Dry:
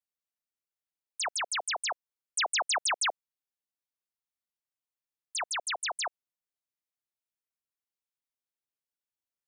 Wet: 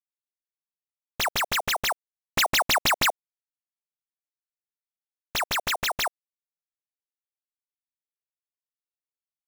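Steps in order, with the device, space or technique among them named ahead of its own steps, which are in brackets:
early companding sampler (sample-rate reduction 9,400 Hz, jitter 0%; log-companded quantiser 8 bits)
level +6.5 dB

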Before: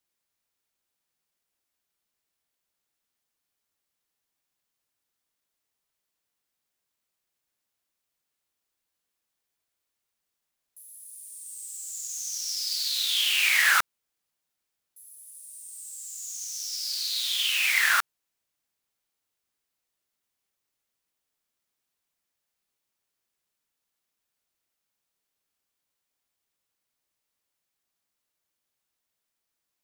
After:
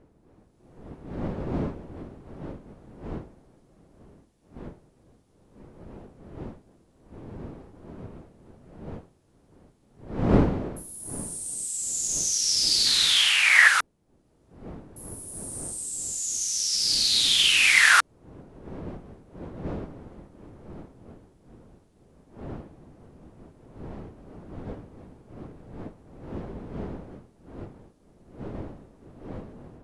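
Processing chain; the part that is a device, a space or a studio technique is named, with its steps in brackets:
0:12.86–0:13.68: flat-topped bell 1,000 Hz +9.5 dB 2.4 octaves
smartphone video outdoors (wind on the microphone 340 Hz −45 dBFS; automatic gain control gain up to 9 dB; level −1 dB; AAC 96 kbit/s 24,000 Hz)

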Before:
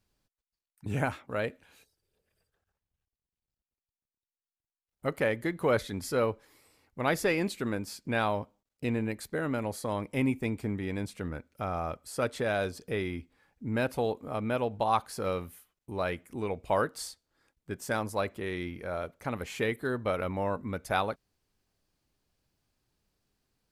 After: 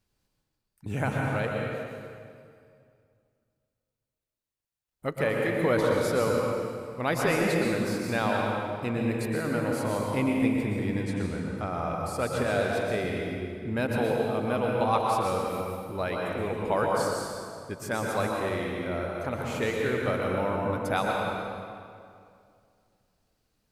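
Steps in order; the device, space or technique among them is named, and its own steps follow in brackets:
stairwell (convolution reverb RT60 2.3 s, pre-delay 110 ms, DRR −1.5 dB)
0:11.03–0:11.97: low-pass filter 11,000 Hz 24 dB per octave

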